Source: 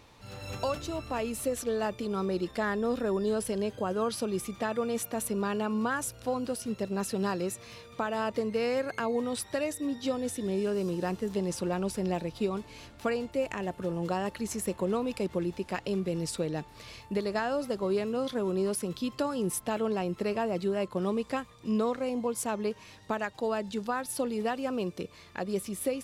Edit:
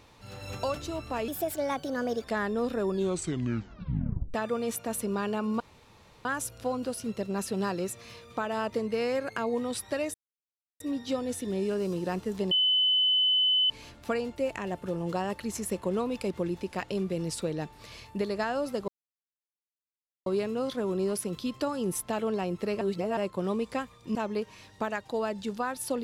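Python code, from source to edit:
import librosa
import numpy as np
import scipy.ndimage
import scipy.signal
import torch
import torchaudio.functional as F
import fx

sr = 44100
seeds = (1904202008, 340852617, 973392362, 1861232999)

y = fx.edit(x, sr, fx.speed_span(start_s=1.28, length_s=1.23, speed=1.28),
    fx.tape_stop(start_s=3.15, length_s=1.46),
    fx.insert_room_tone(at_s=5.87, length_s=0.65),
    fx.insert_silence(at_s=9.76, length_s=0.66),
    fx.bleep(start_s=11.47, length_s=1.19, hz=3020.0, db=-21.0),
    fx.insert_silence(at_s=17.84, length_s=1.38),
    fx.reverse_span(start_s=20.39, length_s=0.36),
    fx.cut(start_s=21.73, length_s=0.71), tone=tone)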